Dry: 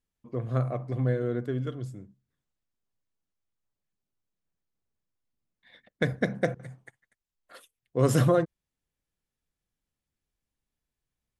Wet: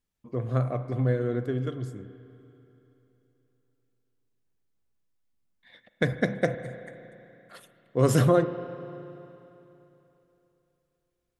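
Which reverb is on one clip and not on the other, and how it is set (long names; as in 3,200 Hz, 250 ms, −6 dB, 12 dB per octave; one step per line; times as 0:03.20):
spring reverb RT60 3.2 s, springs 34/48 ms, chirp 70 ms, DRR 11.5 dB
level +1.5 dB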